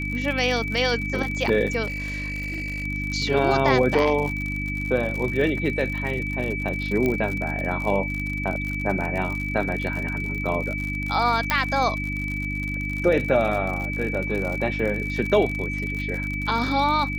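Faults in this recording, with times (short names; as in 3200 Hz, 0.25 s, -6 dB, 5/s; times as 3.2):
crackle 62/s -28 dBFS
hum 50 Hz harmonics 6 -30 dBFS
tone 2300 Hz -29 dBFS
1.86–2.85 clipped -26 dBFS
7.06 pop -12 dBFS
11.5 pop -5 dBFS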